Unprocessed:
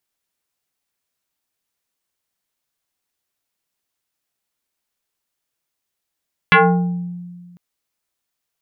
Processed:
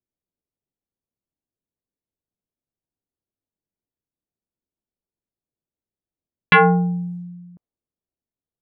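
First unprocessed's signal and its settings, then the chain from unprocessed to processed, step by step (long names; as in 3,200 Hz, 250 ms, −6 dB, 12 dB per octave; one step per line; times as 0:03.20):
two-operator FM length 1.05 s, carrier 176 Hz, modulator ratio 3.56, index 4.4, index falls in 0.75 s exponential, decay 1.76 s, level −6 dB
low-pass that shuts in the quiet parts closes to 390 Hz, open at −24 dBFS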